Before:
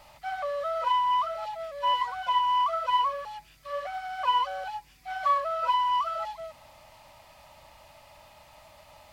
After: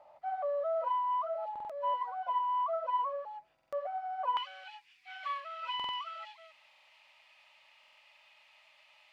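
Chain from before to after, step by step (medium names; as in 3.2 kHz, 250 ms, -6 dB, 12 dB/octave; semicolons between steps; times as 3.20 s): band-pass filter 650 Hz, Q 2.3, from 4.37 s 2.6 kHz; buffer glitch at 1.51/3.54/5.75/6.69/7.79 s, samples 2048, times 3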